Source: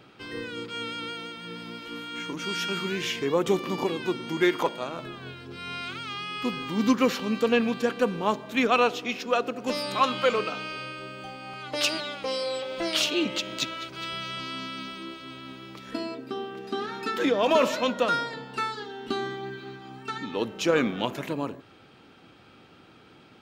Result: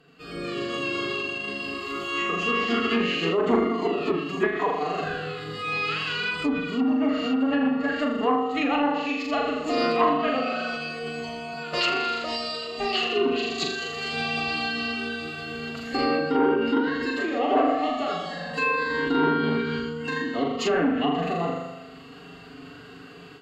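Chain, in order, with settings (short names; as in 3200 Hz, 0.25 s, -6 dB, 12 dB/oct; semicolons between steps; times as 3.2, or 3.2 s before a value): ripple EQ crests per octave 1.4, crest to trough 14 dB; on a send: flutter echo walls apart 7 m, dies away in 0.94 s; on the sum: AGC gain up to 12 dB; treble ducked by the level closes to 1600 Hz, closed at -9 dBFS; formant-preserving pitch shift +3 st; core saturation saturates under 530 Hz; gain -7.5 dB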